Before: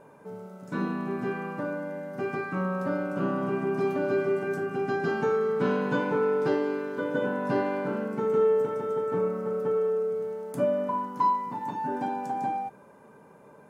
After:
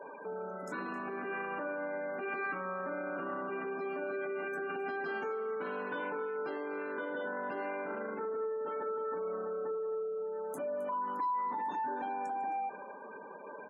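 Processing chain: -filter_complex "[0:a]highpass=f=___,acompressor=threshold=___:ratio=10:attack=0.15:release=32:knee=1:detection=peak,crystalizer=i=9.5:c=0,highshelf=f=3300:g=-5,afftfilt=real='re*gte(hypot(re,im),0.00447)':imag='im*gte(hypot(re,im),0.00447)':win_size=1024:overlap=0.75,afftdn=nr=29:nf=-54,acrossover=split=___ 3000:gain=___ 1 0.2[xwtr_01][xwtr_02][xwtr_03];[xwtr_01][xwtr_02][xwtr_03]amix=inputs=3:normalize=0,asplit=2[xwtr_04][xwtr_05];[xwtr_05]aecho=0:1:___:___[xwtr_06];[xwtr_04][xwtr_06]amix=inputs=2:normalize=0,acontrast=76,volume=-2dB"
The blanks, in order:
170, -40dB, 220, 0.112, 265, 0.119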